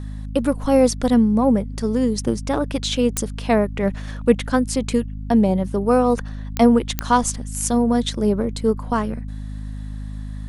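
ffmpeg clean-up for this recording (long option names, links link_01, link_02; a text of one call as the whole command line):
ffmpeg -i in.wav -af "adeclick=threshold=4,bandreject=frequency=51.8:width_type=h:width=4,bandreject=frequency=103.6:width_type=h:width=4,bandreject=frequency=155.4:width_type=h:width=4,bandreject=frequency=207.2:width_type=h:width=4,bandreject=frequency=259:width_type=h:width=4" out.wav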